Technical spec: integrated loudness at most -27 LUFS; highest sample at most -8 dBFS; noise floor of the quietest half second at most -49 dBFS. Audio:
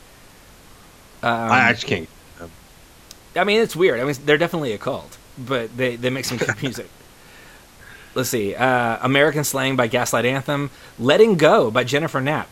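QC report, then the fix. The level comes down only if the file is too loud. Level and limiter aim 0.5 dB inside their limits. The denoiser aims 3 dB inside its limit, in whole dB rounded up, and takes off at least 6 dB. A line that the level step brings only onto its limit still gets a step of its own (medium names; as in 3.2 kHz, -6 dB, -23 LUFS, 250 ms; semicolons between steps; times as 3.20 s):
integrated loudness -19.0 LUFS: fail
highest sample -2.0 dBFS: fail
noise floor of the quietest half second -47 dBFS: fail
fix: trim -8.5 dB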